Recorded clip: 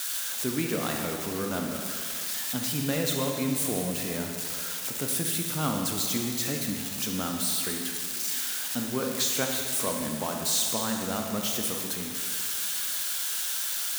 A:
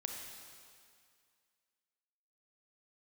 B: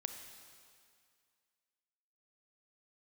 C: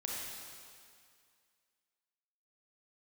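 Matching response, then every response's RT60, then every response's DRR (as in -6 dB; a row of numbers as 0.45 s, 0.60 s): A; 2.2 s, 2.2 s, 2.2 s; 1.5 dB, 6.0 dB, -4.0 dB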